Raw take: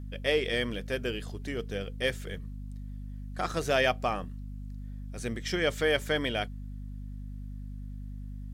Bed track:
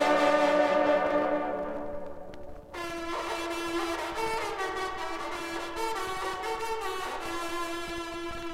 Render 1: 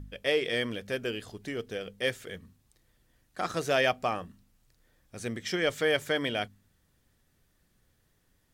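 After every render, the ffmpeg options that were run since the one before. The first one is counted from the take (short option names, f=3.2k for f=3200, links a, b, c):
-af "bandreject=f=50:t=h:w=4,bandreject=f=100:t=h:w=4,bandreject=f=150:t=h:w=4,bandreject=f=200:t=h:w=4,bandreject=f=250:t=h:w=4"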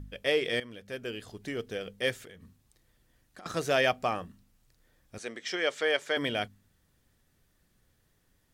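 -filter_complex "[0:a]asettb=1/sr,asplit=3[a][b][c];[a]atrim=end=2.234[d];[b]atrim=start=2.23:end=3.46,asetpts=PTS-STARTPTS,afade=t=in:d=0.004:c=qsin,afade=t=out:st=1.226:d=0.004:c=qsin,acompressor=threshold=-45dB:ratio=12:attack=3.2:release=140:knee=1:detection=peak[e];[c]atrim=start=3.456[f];[d][e]acrossfade=d=0.004:c1=hsin:c2=qsin[g];[g][f]acrossfade=d=0.004:c1=qsin:c2=hsin,asettb=1/sr,asplit=3[h][i][j];[h]atrim=end=5.184[k];[i]atrim=start=5.18:end=6.17,asetpts=PTS-STARTPTS,afade=t=in:d=0.004:c=qsin,afade=t=out:st=0.986:d=0.004:c=qsin,highpass=410,lowpass=7.3k[l];[j]atrim=start=6.166[m];[k][l]acrossfade=d=0.004:c1=hsin:c2=qsin[n];[n][m]acrossfade=d=0.004:c1=qsin:c2=hsin,asplit=2[o][p];[o]atrim=end=0.6,asetpts=PTS-STARTPTS,afade=t=out:st=0.596:d=0.004:c=hsin:silence=0.188365[q];[p]atrim=start=0.6,asetpts=PTS-STARTPTS,afade=t=in:d=0.9:silence=0.188365[r];[q][r]concat=n=2:v=0:a=1"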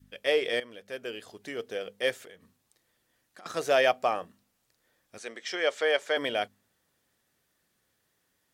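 -af "highpass=f=430:p=1,adynamicequalizer=threshold=0.00708:dfrequency=590:dqfactor=0.95:tfrequency=590:tqfactor=0.95:attack=5:release=100:ratio=0.375:range=3:mode=boostabove:tftype=bell"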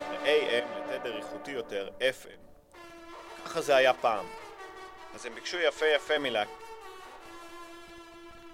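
-filter_complex "[1:a]volume=-13dB[a];[0:a][a]amix=inputs=2:normalize=0"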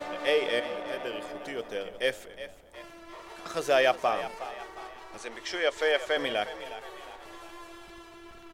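-filter_complex "[0:a]asplit=5[a][b][c][d][e];[b]adelay=361,afreqshift=37,volume=-13.5dB[f];[c]adelay=722,afreqshift=74,volume=-20.4dB[g];[d]adelay=1083,afreqshift=111,volume=-27.4dB[h];[e]adelay=1444,afreqshift=148,volume=-34.3dB[i];[a][f][g][h][i]amix=inputs=5:normalize=0"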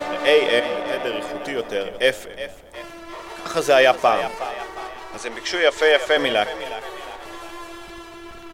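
-af "volume=10dB,alimiter=limit=-3dB:level=0:latency=1"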